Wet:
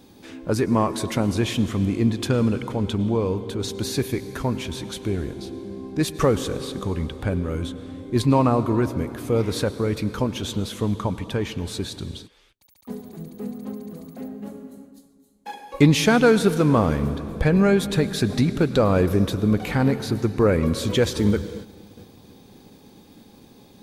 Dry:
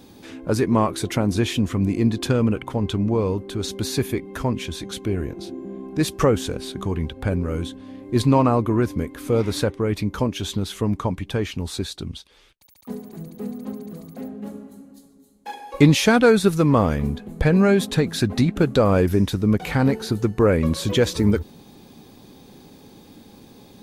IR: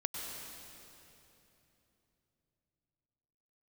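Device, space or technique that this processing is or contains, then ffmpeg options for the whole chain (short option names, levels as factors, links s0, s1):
keyed gated reverb: -filter_complex "[0:a]asplit=3[s0][s1][s2];[1:a]atrim=start_sample=2205[s3];[s1][s3]afir=irnorm=-1:irlink=0[s4];[s2]apad=whole_len=1050726[s5];[s4][s5]sidechaingate=range=0.00562:threshold=0.00631:ratio=16:detection=peak,volume=0.316[s6];[s0][s6]amix=inputs=2:normalize=0,volume=0.668"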